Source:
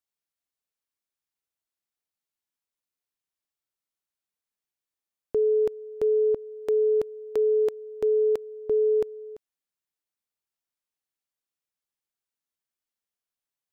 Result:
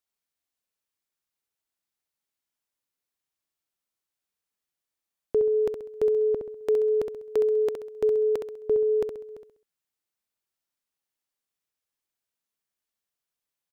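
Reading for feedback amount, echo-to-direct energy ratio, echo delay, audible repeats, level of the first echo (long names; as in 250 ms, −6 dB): 37%, −6.0 dB, 66 ms, 4, −6.5 dB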